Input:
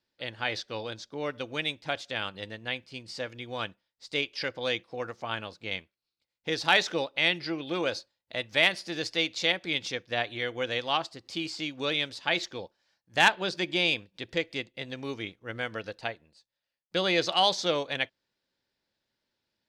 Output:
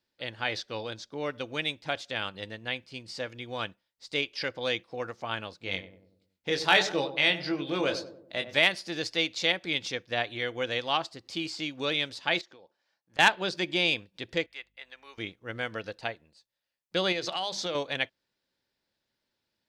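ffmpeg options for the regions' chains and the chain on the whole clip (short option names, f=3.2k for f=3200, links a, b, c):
-filter_complex "[0:a]asettb=1/sr,asplit=3[a][b][c];[a]atrim=end=5.644[d];[b]atrim=start=5.64:end=8.59,asetpts=PTS-STARTPTS,afade=t=in:d=0.004:c=qsin,afade=t=out:st=2.946:d=0.004:c=qsin,asplit=2[e][f];[f]adelay=21,volume=-6dB[g];[e][g]amix=inputs=2:normalize=0,atrim=end_sample=130095,asplit=2[h][i];[i]adelay=95,lowpass=f=870:p=1,volume=-9.5dB,asplit=2[j][k];[k]adelay=95,lowpass=f=870:p=1,volume=0.53,asplit=2[l][m];[m]adelay=95,lowpass=f=870:p=1,volume=0.53,asplit=2[n][o];[o]adelay=95,lowpass=f=870:p=1,volume=0.53,asplit=2[p][q];[q]adelay=95,lowpass=f=870:p=1,volume=0.53,asplit=2[r][s];[s]adelay=95,lowpass=f=870:p=1,volume=0.53[t];[h][j][l][n][p][r][t]amix=inputs=7:normalize=0,atrim=end_sample=130095[u];[c]atrim=start=8.586[v];[d][u]acrossfade=d=0.004:c1=hsin:c2=qsin[w];[w][v]acrossfade=d=0.004:c1=qsin:c2=hsin,asettb=1/sr,asplit=3[x][y][z];[x]atrim=end=12.414[aa];[y]atrim=start=12.41:end=13.19,asetpts=PTS-STARTPTS,afade=t=in:d=0.004:c=qsin,afade=t=out:st=0.776:d=0.004:c=qsin,highpass=f=350:p=1,highshelf=f=2.8k:g=-8.5,acompressor=threshold=-49dB:ratio=12:attack=3.2:release=140:knee=1:detection=peak[ab];[z]atrim=start=13.186[ac];[aa][ab]acrossfade=d=0.004:c1=hsin:c2=qsin[ad];[ad][ac]acrossfade=d=0.004:c1=qsin:c2=hsin,asettb=1/sr,asplit=3[ae][af][ag];[ae]atrim=end=14.464[ah];[af]atrim=start=14.46:end=15.18,asetpts=PTS-STARTPTS,afade=t=in:d=0.004:c=qsin,afade=t=out:st=0.716:d=0.004:c=qsin,highpass=1.3k,equalizer=f=6k:t=o:w=2.2:g=-13,aeval=exprs='val(0)+0.000141*(sin(2*PI*50*n/s)+sin(2*PI*2*50*n/s)/2+sin(2*PI*3*50*n/s)/3+sin(2*PI*4*50*n/s)/4+sin(2*PI*5*50*n/s)/5)':c=same[ai];[ag]atrim=start=15.176[aj];[ah][ai]acrossfade=d=0.004:c1=hsin:c2=qsin[ak];[ak][aj]acrossfade=d=0.004:c1=qsin:c2=hsin,asettb=1/sr,asplit=3[al][am][an];[al]atrim=end=17.124[ao];[am]atrim=start=17.12:end=17.75,asetpts=PTS-STARTPTS,afade=t=in:d=0.004:c=qsin,afade=t=out:st=0.626:d=0.004:c=qsin,bandreject=f=50:t=h:w=6,bandreject=f=100:t=h:w=6,bandreject=f=150:t=h:w=6,bandreject=f=200:t=h:w=6,bandreject=f=250:t=h:w=6,bandreject=f=300:t=h:w=6,bandreject=f=350:t=h:w=6,acompressor=threshold=-28dB:ratio=5:attack=3.2:release=140:knee=1:detection=peak[ap];[an]atrim=start=17.746[aq];[ao][ap]acrossfade=d=0.004:c1=hsin:c2=qsin[ar];[ar][aq]acrossfade=d=0.004:c1=qsin:c2=hsin"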